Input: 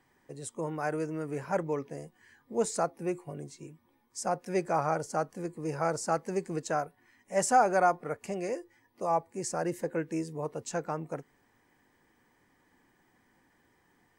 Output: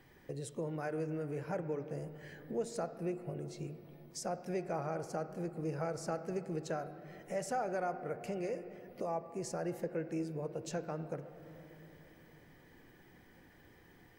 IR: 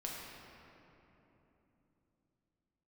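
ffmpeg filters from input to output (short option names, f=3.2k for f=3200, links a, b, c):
-filter_complex "[0:a]equalizer=f=250:t=o:w=1:g=-6,equalizer=f=1k:t=o:w=1:g=-11,equalizer=f=2k:t=o:w=1:g=-3,equalizer=f=8k:t=o:w=1:g=-10,acompressor=threshold=-54dB:ratio=2.5,asplit=2[a][b];[1:a]atrim=start_sample=2205,lowpass=3.6k[c];[b][c]afir=irnorm=-1:irlink=0,volume=-7dB[d];[a][d]amix=inputs=2:normalize=0,volume=9.5dB"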